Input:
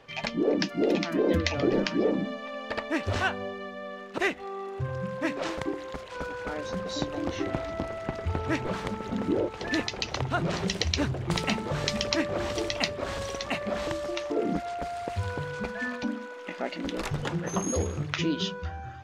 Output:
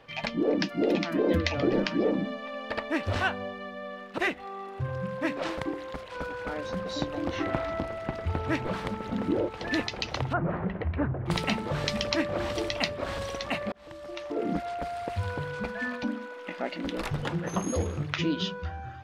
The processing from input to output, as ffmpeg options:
-filter_complex "[0:a]asettb=1/sr,asplit=3[a][b][c];[a]atrim=end=7.334[d];[b]atrim=start=7.33:end=7.8,asetpts=PTS-STARTPTS,afade=t=in:d=0.004:c=qsin,afade=t=out:st=0.466:d=0.004:c=qsin,equalizer=f=1.3k:w=0.7:g=5[e];[c]atrim=start=7.796[f];[d][e]acrossfade=d=0.004:c1=hsin:c2=qsin[g];[g][f]acrossfade=d=0.004:c1=qsin:c2=hsin,asettb=1/sr,asplit=3[h][i][j];[h]atrim=end=10.334[k];[i]atrim=start=10.33:end=11.26,asetpts=PTS-STARTPTS,afade=t=in:d=0.004:c=qsin,afade=t=out:st=0.926:d=0.004:c=qsin,lowpass=f=1.7k:w=0.5412,lowpass=f=1.7k:w=1.3066[l];[j]atrim=start=11.256[m];[k][l]acrossfade=d=0.004:c1=hsin:c2=qsin[n];[n][m]acrossfade=d=0.004:c1=qsin:c2=hsin,asplit=2[o][p];[o]atrim=end=13.72,asetpts=PTS-STARTPTS,afade=t=out:st=13.716:d=0.004:c=hsin[q];[p]atrim=start=13.72,asetpts=PTS-STARTPTS,afade=t=in:d=0.86[r];[q][r]concat=n=2:v=0:a=1,equalizer=f=6.7k:t=o:w=0.68:g=-6,bandreject=f=400:w=13"

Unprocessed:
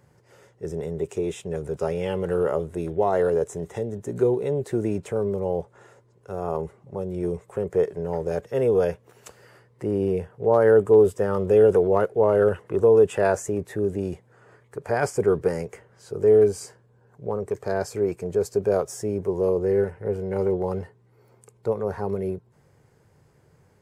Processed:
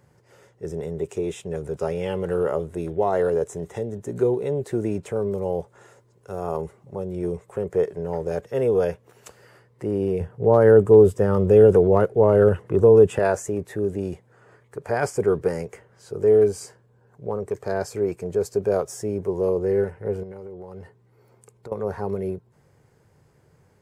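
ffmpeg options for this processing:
-filter_complex "[0:a]asettb=1/sr,asplit=3[a][b][c];[a]atrim=end=5.314[d];[b]atrim=start=5.31:end=6.96,asetpts=PTS-STARTPTS,afade=t=in:d=0.004:c=qsin,afade=t=out:st=1.646:d=0.004:c=qsin,highshelf=f=4.3k:g=6[e];[c]atrim=start=6.956[f];[d][e]acrossfade=d=0.004:c1=hsin:c2=qsin[g];[g][f]acrossfade=d=0.004:c1=qsin:c2=hsin,asettb=1/sr,asplit=3[h][i][j];[h]atrim=end=10.204[k];[i]atrim=start=10.2:end=13.19,asetpts=PTS-STARTPTS,afade=t=in:d=0.004:c=qsin,afade=t=out:st=2.986:d=0.004:c=qsin,equalizer=f=100:w=0.35:g=8.5[l];[j]atrim=start=13.186[m];[k][l]acrossfade=d=0.004:c1=hsin:c2=qsin[n];[n][m]acrossfade=d=0.004:c1=qsin:c2=hsin,asettb=1/sr,asplit=3[o][p][q];[o]atrim=end=20.234[r];[p]atrim=start=20.23:end=21.72,asetpts=PTS-STARTPTS,afade=t=in:d=0.004:c=qsin,afade=t=out:st=1.486:d=0.004:c=qsin,acompressor=threshold=-35dB:ratio=10:attack=3.2:release=140:knee=1:detection=peak[s];[q]atrim=start=21.716[t];[r][s]acrossfade=d=0.004:c1=hsin:c2=qsin[u];[u][t]acrossfade=d=0.004:c1=qsin:c2=hsin"

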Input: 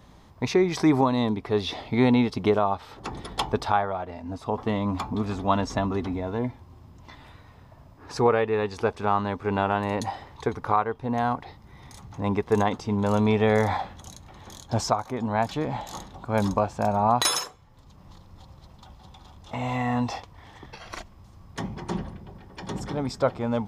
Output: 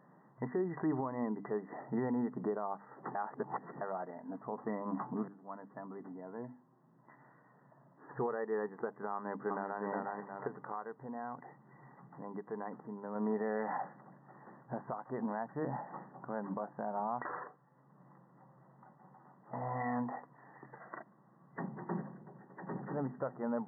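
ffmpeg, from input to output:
-filter_complex "[0:a]asplit=2[a][b];[b]afade=t=in:st=9.14:d=0.01,afade=t=out:st=9.84:d=0.01,aecho=0:1:360|720|1080|1440:0.668344|0.200503|0.060151|0.0180453[c];[a][c]amix=inputs=2:normalize=0,asplit=3[d][e][f];[d]afade=t=out:st=10.46:d=0.02[g];[e]acompressor=threshold=-38dB:ratio=2:attack=3.2:release=140:knee=1:detection=peak,afade=t=in:st=10.46:d=0.02,afade=t=out:st=13.15:d=0.02[h];[f]afade=t=in:st=13.15:d=0.02[i];[g][h][i]amix=inputs=3:normalize=0,asplit=4[j][k][l][m];[j]atrim=end=3.152[n];[k]atrim=start=3.148:end=3.812,asetpts=PTS-STARTPTS,areverse[o];[l]atrim=start=3.808:end=5.28,asetpts=PTS-STARTPTS,afade=t=out:st=1.468:d=0.004:c=hsin:silence=0.0944061[p];[m]atrim=start=5.28,asetpts=PTS-STARTPTS,afade=t=in:d=3.13:silence=0.0944061[q];[n][o]acrossfade=d=0.004:c1=hsin:c2=hsin[r];[p][q]concat=n=2:v=0:a=1[s];[r][s]acrossfade=d=0.004:c1=hsin:c2=hsin,afftfilt=real='re*between(b*sr/4096,120,2000)':imag='im*between(b*sr/4096,120,2000)':win_size=4096:overlap=0.75,bandreject=f=50:t=h:w=6,bandreject=f=100:t=h:w=6,bandreject=f=150:t=h:w=6,bandreject=f=200:t=h:w=6,bandreject=f=250:t=h:w=6,bandreject=f=300:t=h:w=6,alimiter=limit=-19dB:level=0:latency=1:release=226,volume=-7.5dB"

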